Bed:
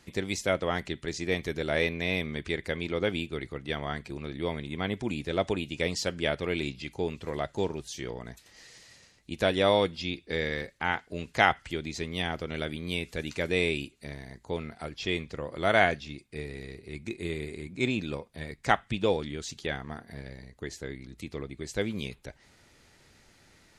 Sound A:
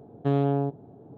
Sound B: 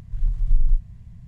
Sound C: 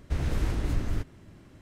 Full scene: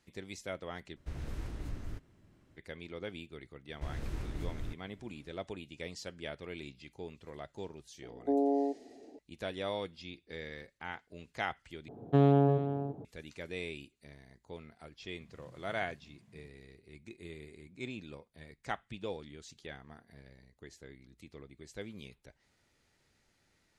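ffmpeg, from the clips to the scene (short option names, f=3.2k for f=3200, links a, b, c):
-filter_complex "[3:a]asplit=2[a][b];[1:a]asplit=2[c][d];[0:a]volume=-13.5dB[e];[c]asuperpass=centerf=450:order=12:qfactor=0.75[f];[d]asplit=2[g][h];[h]adelay=344,volume=-10dB,highshelf=f=4k:g=-7.74[i];[g][i]amix=inputs=2:normalize=0[j];[2:a]highpass=f=180:w=0.5412,highpass=f=180:w=1.3066[k];[e]asplit=3[l][m][n];[l]atrim=end=0.964[o];[a]atrim=end=1.61,asetpts=PTS-STARTPTS,volume=-12.5dB[p];[m]atrim=start=2.566:end=11.884[q];[j]atrim=end=1.17,asetpts=PTS-STARTPTS,volume=-0.5dB[r];[n]atrim=start=13.046[s];[b]atrim=end=1.61,asetpts=PTS-STARTPTS,volume=-11dB,afade=t=in:d=0.004:c=hsin,afade=t=out:st=1.606:d=0.004:c=hsin,adelay=3710[t];[f]atrim=end=1.17,asetpts=PTS-STARTPTS,volume=-3dB,afade=t=in:d=0.004:c=hsin,afade=t=out:st=1.166:d=0.004:c=hsin,adelay=353682S[u];[k]atrim=end=1.27,asetpts=PTS-STARTPTS,volume=-5dB,afade=t=in:d=0.004:c=hsin,afade=t=out:st=1.266:d=0.004:c=hsin,adelay=15210[v];[o][p]acrossfade=d=0.004:c1=hsin:c2=hsin[w];[w][q]acrossfade=d=0.004:c1=hsin:c2=hsin[x];[x][r]acrossfade=d=0.004:c1=hsin:c2=hsin[y];[y][s]acrossfade=d=0.004:c1=hsin:c2=hsin[z];[z][t][u][v]amix=inputs=4:normalize=0"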